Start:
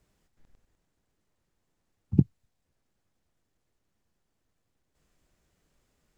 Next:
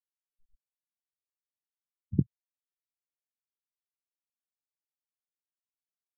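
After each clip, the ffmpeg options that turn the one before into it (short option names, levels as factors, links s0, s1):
-af "afftfilt=real='re*gte(hypot(re,im),0.0178)':imag='im*gte(hypot(re,im),0.0178)':win_size=1024:overlap=0.75,volume=0.562"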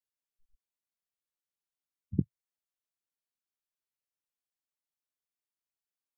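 -af "equalizer=f=130:w=4.2:g=-3.5,volume=0.794"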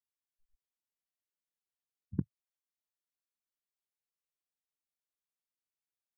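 -af "aeval=exprs='0.251*(cos(1*acos(clip(val(0)/0.251,-1,1)))-cos(1*PI/2))+0.00631*(cos(7*acos(clip(val(0)/0.251,-1,1)))-cos(7*PI/2))':c=same,volume=0.596"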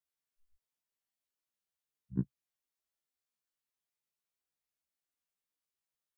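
-af "afftfilt=real='re*1.73*eq(mod(b,3),0)':imag='im*1.73*eq(mod(b,3),0)':win_size=2048:overlap=0.75,volume=1.41"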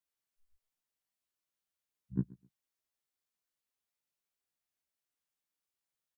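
-af "aecho=1:1:128|256:0.0794|0.0175"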